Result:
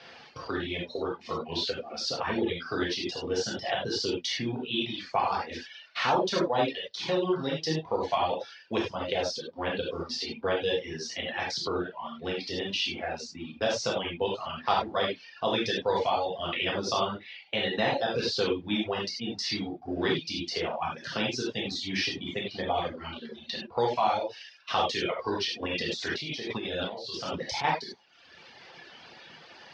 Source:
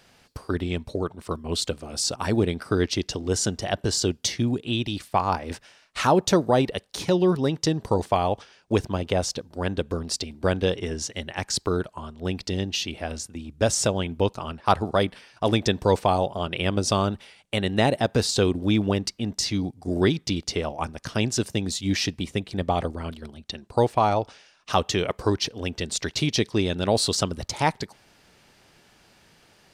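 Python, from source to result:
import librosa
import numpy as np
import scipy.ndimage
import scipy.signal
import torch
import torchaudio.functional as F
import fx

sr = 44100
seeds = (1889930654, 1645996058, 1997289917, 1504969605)

y = fx.law_mismatch(x, sr, coded='mu')
y = fx.highpass(y, sr, hz=380.0, slope=6)
y = fx.peak_eq(y, sr, hz=3000.0, db=3.0, octaves=0.85)
y = fx.rev_gated(y, sr, seeds[0], gate_ms=120, shape='flat', drr_db=-5.5)
y = fx.dereverb_blind(y, sr, rt60_s=0.81)
y = np.repeat(scipy.signal.resample_poly(y, 1, 3), 3)[:len(y)]
y = fx.noise_reduce_blind(y, sr, reduce_db=6)
y = fx.over_compress(y, sr, threshold_db=-28.0, ratio=-1.0, at=(25.61, 27.63), fade=0.02)
y = scipy.signal.sosfilt(scipy.signal.butter(6, 5600.0, 'lowpass', fs=sr, output='sos'), y)
y = fx.band_squash(y, sr, depth_pct=40)
y = F.gain(torch.from_numpy(y), -8.0).numpy()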